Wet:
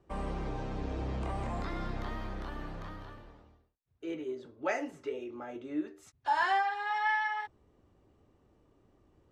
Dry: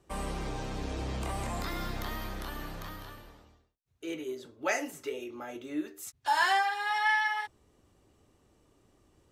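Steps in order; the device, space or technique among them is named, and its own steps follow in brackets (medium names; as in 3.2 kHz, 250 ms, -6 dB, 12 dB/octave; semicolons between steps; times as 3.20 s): through cloth (low-pass 7.2 kHz 12 dB/octave; treble shelf 2.6 kHz -13 dB)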